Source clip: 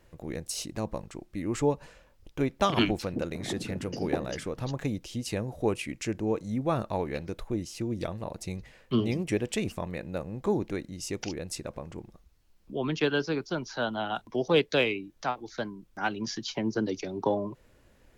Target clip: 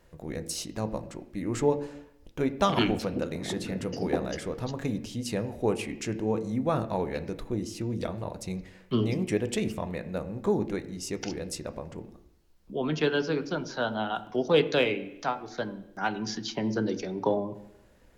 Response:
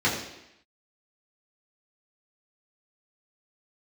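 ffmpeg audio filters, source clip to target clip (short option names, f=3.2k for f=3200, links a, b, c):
-filter_complex "[0:a]asplit=2[a][b];[1:a]atrim=start_sample=2205,lowpass=3.6k[c];[b][c]afir=irnorm=-1:irlink=0,volume=-22.5dB[d];[a][d]amix=inputs=2:normalize=0"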